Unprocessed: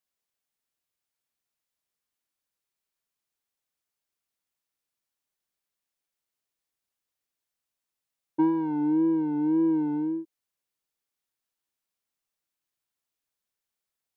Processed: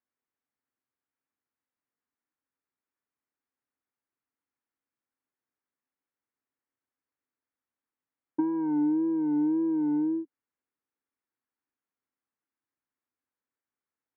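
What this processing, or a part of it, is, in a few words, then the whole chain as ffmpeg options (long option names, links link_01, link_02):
bass amplifier: -af "acompressor=threshold=-27dB:ratio=6,highpass=82,equalizer=frequency=170:width_type=q:width=4:gain=-6,equalizer=frequency=270:width_type=q:width=4:gain=8,equalizer=frequency=640:width_type=q:width=4:gain=-5,lowpass=frequency=2000:width=0.5412,lowpass=frequency=2000:width=1.3066"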